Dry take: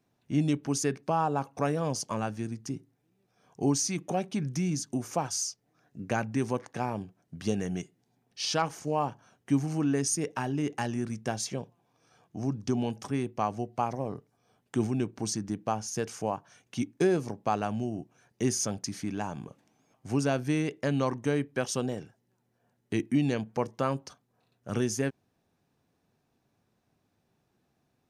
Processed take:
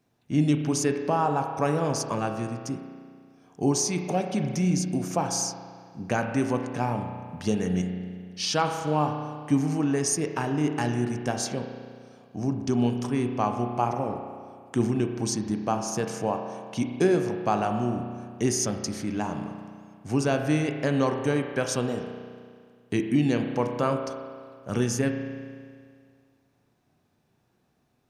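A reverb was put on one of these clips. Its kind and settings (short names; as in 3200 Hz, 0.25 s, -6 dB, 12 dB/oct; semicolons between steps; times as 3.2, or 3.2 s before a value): spring tank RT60 2 s, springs 33 ms, chirp 30 ms, DRR 5 dB; gain +3 dB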